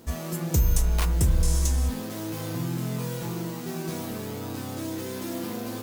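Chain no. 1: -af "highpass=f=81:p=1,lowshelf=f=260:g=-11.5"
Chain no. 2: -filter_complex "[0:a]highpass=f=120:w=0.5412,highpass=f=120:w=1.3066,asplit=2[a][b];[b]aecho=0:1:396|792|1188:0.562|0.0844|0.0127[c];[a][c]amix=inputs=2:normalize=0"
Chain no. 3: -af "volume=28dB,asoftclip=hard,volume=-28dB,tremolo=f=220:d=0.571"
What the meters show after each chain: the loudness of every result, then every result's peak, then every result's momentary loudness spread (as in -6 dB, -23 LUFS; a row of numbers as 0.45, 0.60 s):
-34.5, -30.5, -35.5 LUFS; -14.5, -12.0, -28.0 dBFS; 7, 5, 3 LU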